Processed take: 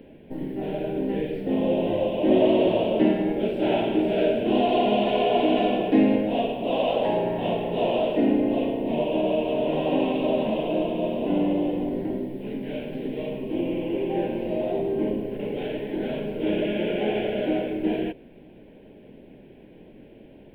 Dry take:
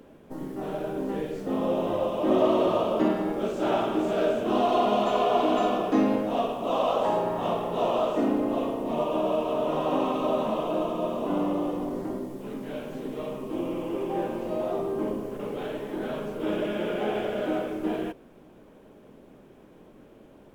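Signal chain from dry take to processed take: resonant high shelf 3.7 kHz -8.5 dB, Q 1.5; static phaser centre 2.9 kHz, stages 4; trim +5 dB

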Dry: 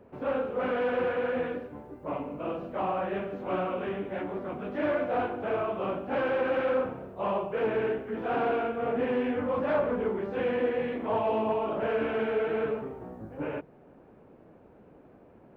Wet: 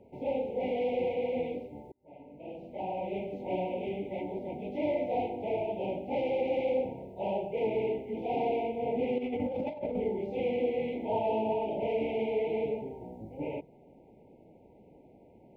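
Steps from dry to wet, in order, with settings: 1.92–3.28 s: fade in; FFT band-reject 950–2000 Hz; 9.18–10.00 s: compressor with a negative ratio -31 dBFS, ratio -0.5; trim -2 dB

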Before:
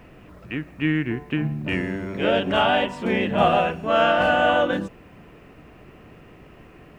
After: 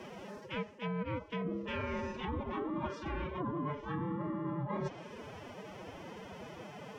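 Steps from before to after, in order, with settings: ring modulator 410 Hz; peaking EQ 110 Hz +3.5 dB 0.33 oct; low-pass that closes with the level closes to 630 Hz, closed at -17.5 dBFS; high-pass 40 Hz 12 dB/octave; peaking EQ 5.7 kHz +12 dB 0.66 oct; reverse; compression 12:1, threshold -36 dBFS, peak gain reduction 19 dB; reverse; formant-preserving pitch shift +10 st; trim +3 dB

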